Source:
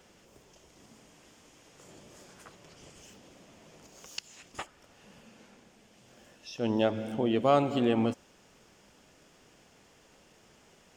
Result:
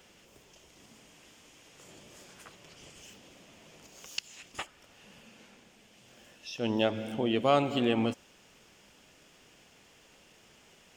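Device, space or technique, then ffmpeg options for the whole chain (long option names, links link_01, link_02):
presence and air boost: -af "equalizer=frequency=2800:width_type=o:width=1.2:gain=6,highshelf=frequency=9200:gain=6.5,volume=-1.5dB"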